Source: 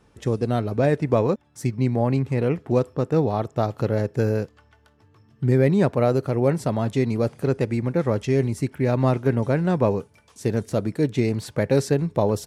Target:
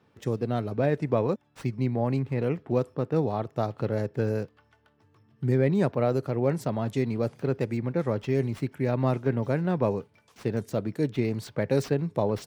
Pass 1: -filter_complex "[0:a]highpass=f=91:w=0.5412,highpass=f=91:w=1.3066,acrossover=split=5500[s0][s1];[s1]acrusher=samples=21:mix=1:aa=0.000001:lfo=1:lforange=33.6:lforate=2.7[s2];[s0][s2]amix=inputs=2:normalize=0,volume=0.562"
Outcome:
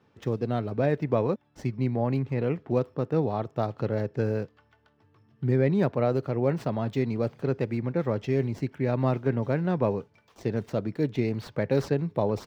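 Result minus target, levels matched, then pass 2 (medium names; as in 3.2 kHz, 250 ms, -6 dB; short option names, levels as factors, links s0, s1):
decimation with a swept rate: distortion +18 dB
-filter_complex "[0:a]highpass=f=91:w=0.5412,highpass=f=91:w=1.3066,acrossover=split=5500[s0][s1];[s1]acrusher=samples=4:mix=1:aa=0.000001:lfo=1:lforange=6.4:lforate=2.7[s2];[s0][s2]amix=inputs=2:normalize=0,volume=0.562"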